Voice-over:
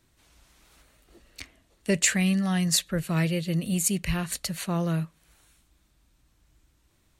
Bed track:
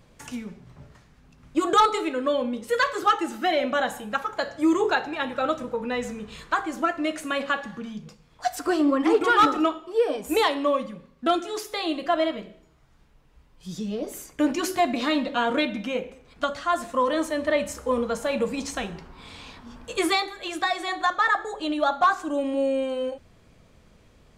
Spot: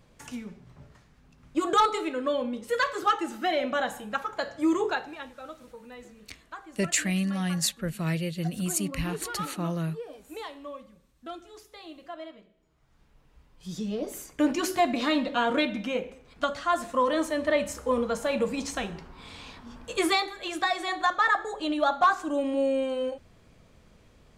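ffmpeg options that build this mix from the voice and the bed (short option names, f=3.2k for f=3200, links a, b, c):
-filter_complex "[0:a]adelay=4900,volume=-3.5dB[a];[1:a]volume=12.5dB,afade=t=out:st=4.76:d=0.57:silence=0.199526,afade=t=in:st=12.55:d=0.64:silence=0.158489[b];[a][b]amix=inputs=2:normalize=0"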